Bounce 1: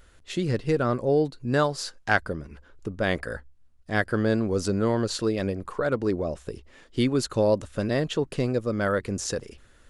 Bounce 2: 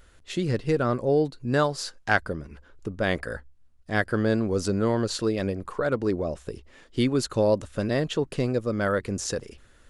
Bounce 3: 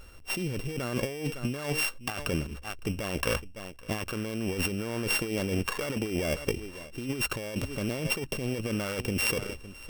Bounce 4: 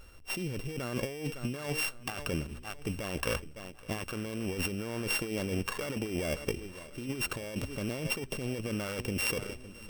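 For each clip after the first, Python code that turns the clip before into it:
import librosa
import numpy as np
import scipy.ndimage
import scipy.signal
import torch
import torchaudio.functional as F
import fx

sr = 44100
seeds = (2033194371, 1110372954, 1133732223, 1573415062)

y1 = x
y2 = np.r_[np.sort(y1[:len(y1) // 16 * 16].reshape(-1, 16), axis=1).ravel(), y1[len(y1) // 16 * 16:]]
y2 = y2 + 10.0 ** (-22.5 / 20.0) * np.pad(y2, (int(558 * sr / 1000.0), 0))[:len(y2)]
y2 = fx.over_compress(y2, sr, threshold_db=-31.0, ratio=-1.0)
y3 = fx.echo_feedback(y2, sr, ms=1098, feedback_pct=47, wet_db=-20.0)
y3 = y3 * 10.0 ** (-3.5 / 20.0)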